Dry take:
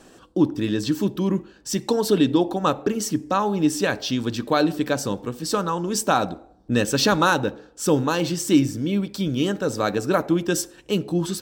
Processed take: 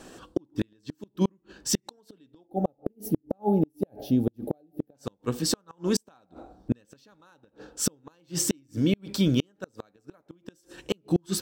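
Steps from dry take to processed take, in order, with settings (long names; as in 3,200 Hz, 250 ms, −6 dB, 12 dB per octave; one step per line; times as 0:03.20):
gain on a spectral selection 0:02.47–0:04.95, 870–9,800 Hz −21 dB
gate with flip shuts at −14 dBFS, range −41 dB
level +2 dB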